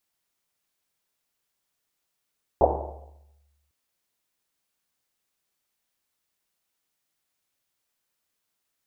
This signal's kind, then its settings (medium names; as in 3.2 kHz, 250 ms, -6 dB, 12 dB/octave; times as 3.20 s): Risset drum, pitch 72 Hz, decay 1.46 s, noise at 620 Hz, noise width 500 Hz, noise 70%